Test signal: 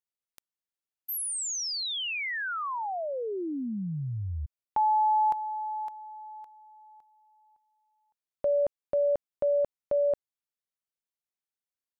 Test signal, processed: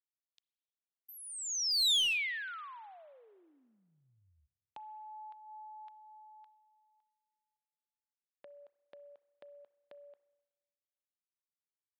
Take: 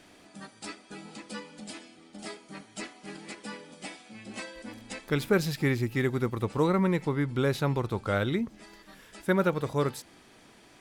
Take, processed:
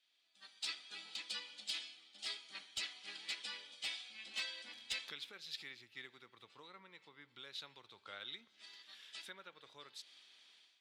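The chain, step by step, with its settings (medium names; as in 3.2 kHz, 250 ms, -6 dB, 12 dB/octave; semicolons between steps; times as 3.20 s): compression 12:1, threshold -38 dBFS; spring tank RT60 2.5 s, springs 31/59 ms, chirp 35 ms, DRR 18 dB; level rider gain up to 9 dB; band-pass filter 3.6 kHz, Q 2.7; one-sided clip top -35 dBFS, bottom -28 dBFS; three bands expanded up and down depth 70%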